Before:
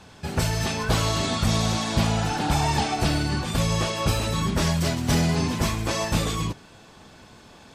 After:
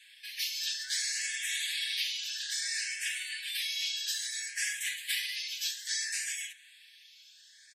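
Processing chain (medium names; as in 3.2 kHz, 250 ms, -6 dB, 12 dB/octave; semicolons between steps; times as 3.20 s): Chebyshev high-pass 1.6 kHz, order 10; comb 6.7 ms; barber-pole phaser +0.6 Hz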